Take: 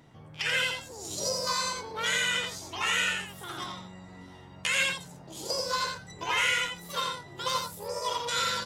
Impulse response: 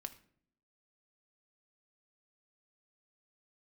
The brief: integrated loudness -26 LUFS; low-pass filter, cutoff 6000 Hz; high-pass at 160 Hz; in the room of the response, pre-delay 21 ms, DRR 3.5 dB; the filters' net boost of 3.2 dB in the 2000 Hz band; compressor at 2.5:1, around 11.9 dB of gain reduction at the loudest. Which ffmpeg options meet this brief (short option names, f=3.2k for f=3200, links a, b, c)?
-filter_complex "[0:a]highpass=160,lowpass=6k,equalizer=f=2k:t=o:g=4,acompressor=threshold=-39dB:ratio=2.5,asplit=2[a][b];[1:a]atrim=start_sample=2205,adelay=21[c];[b][c]afir=irnorm=-1:irlink=0,volume=0.5dB[d];[a][d]amix=inputs=2:normalize=0,volume=10dB"